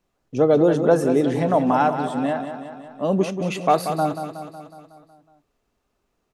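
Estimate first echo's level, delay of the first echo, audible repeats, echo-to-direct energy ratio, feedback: -9.0 dB, 0.184 s, 6, -7.0 dB, 59%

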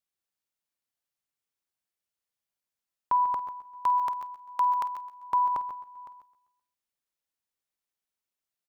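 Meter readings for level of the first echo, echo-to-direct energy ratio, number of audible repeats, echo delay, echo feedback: -16.0 dB, -9.0 dB, 5, 50 ms, no steady repeat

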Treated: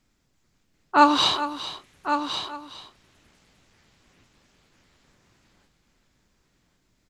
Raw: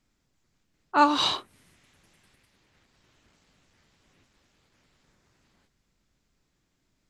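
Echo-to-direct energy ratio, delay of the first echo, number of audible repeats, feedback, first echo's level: -7.5 dB, 0.412 s, 3, no steady repeat, -13.0 dB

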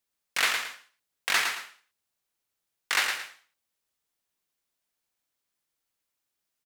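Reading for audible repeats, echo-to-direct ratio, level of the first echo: 2, -5.5 dB, -6.0 dB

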